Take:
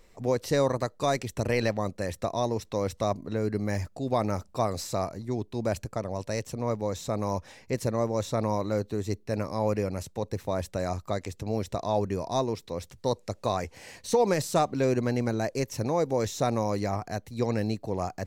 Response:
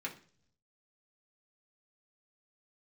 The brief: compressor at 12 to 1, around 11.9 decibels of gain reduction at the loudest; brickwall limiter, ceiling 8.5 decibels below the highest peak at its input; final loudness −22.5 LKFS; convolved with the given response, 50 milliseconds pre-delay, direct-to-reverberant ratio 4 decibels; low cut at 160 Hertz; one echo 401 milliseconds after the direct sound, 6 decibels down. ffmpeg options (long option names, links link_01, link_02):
-filter_complex "[0:a]highpass=160,acompressor=threshold=-30dB:ratio=12,alimiter=level_in=3dB:limit=-24dB:level=0:latency=1,volume=-3dB,aecho=1:1:401:0.501,asplit=2[link_01][link_02];[1:a]atrim=start_sample=2205,adelay=50[link_03];[link_02][link_03]afir=irnorm=-1:irlink=0,volume=-5dB[link_04];[link_01][link_04]amix=inputs=2:normalize=0,volume=14.5dB"